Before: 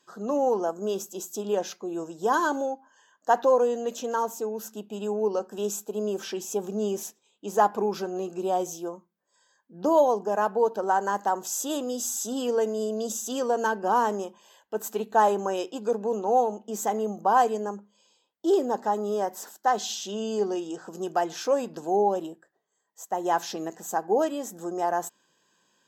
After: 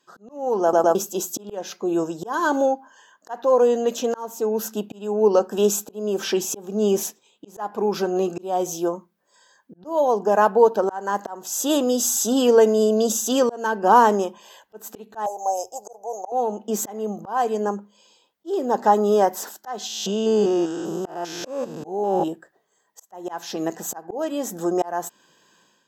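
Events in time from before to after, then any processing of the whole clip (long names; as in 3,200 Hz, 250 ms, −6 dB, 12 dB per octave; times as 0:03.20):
0:00.62: stutter in place 0.11 s, 3 plays
0:15.26–0:16.32: drawn EQ curve 110 Hz 0 dB, 200 Hz −28 dB, 280 Hz −28 dB, 760 Hz +7 dB, 1,100 Hz −15 dB, 1,800 Hz −30 dB, 3,700 Hz −27 dB, 6,000 Hz +7 dB, 9,200 Hz +2 dB, 14,000 Hz +8 dB
0:19.87–0:22.28: spectrum averaged block by block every 200 ms
whole clip: parametric band 7,900 Hz −3 dB 0.77 octaves; automatic gain control gain up to 11 dB; volume swells 423 ms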